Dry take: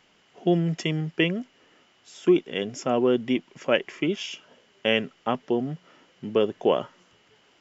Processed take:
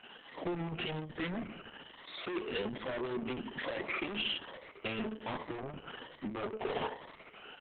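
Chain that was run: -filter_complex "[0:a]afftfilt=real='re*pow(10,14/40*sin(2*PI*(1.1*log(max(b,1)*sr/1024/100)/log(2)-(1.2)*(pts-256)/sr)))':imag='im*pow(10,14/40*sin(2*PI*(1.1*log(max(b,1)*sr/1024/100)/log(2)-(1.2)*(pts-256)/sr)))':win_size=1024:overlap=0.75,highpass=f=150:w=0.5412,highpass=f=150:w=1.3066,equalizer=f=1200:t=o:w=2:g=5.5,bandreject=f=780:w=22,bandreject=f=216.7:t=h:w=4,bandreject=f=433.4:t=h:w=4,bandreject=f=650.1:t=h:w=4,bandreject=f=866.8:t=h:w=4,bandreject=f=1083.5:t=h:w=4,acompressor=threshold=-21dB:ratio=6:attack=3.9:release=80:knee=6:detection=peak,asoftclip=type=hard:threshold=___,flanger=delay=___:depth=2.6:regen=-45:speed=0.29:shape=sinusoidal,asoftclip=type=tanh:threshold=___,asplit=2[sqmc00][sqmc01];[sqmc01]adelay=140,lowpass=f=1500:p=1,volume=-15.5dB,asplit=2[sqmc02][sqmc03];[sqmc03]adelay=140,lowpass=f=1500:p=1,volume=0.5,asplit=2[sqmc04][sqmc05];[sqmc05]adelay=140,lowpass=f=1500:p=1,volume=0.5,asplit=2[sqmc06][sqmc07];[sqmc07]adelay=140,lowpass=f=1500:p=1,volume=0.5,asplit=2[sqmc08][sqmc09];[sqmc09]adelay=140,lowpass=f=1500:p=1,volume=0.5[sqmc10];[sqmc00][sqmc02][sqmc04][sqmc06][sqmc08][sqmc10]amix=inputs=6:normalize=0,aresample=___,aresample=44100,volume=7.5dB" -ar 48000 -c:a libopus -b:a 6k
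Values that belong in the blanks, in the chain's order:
-29.5dB, 7.4, -39.5dB, 8000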